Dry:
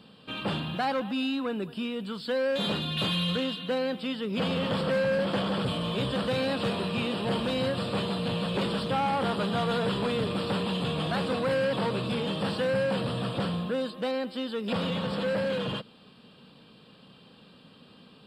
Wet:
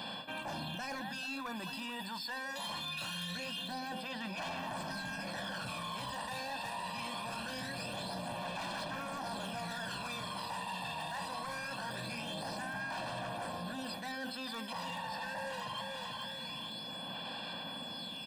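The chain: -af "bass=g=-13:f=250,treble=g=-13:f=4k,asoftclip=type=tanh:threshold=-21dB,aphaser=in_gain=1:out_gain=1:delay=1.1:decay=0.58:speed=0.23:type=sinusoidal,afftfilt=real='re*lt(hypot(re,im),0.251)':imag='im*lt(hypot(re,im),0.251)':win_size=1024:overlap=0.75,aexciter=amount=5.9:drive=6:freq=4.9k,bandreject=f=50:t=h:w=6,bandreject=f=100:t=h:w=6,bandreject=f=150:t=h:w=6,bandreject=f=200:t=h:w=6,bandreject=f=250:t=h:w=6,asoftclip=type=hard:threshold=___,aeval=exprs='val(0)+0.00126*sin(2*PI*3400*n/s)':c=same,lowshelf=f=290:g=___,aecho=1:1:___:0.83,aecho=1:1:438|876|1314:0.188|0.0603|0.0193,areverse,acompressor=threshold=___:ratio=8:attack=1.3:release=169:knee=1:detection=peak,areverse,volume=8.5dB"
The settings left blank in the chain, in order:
-28dB, -5, 1.2, -45dB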